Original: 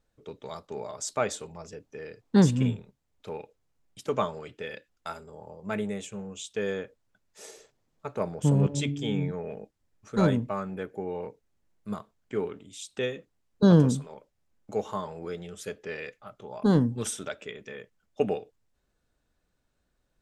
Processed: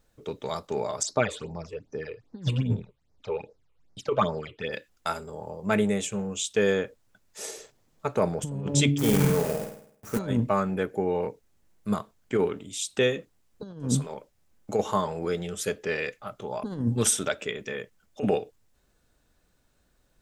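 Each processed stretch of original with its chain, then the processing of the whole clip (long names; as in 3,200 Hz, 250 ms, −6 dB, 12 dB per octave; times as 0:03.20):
0:01.03–0:04.73: low-pass filter 5,100 Hz + all-pass phaser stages 8, 2.5 Hz, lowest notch 200–3,100 Hz
0:08.98–0:10.19: log-companded quantiser 4 bits + parametric band 3,600 Hz −9 dB 1.3 octaves + flutter between parallel walls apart 8.8 metres, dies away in 0.62 s
whole clip: compressor whose output falls as the input rises −27 dBFS, ratio −0.5; high-shelf EQ 6,600 Hz +5.5 dB; level +4 dB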